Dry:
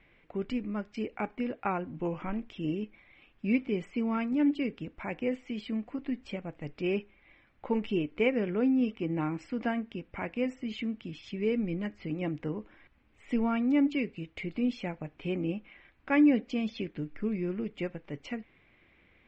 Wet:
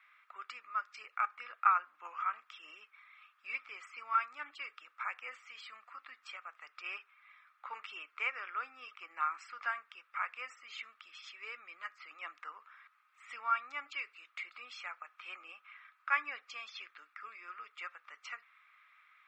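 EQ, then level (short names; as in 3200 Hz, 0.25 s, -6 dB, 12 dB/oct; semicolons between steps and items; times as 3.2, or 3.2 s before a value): ladder high-pass 1200 Hz, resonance 85%; high shelf 3500 Hz +8 dB; notch 3000 Hz, Q 17; +7.0 dB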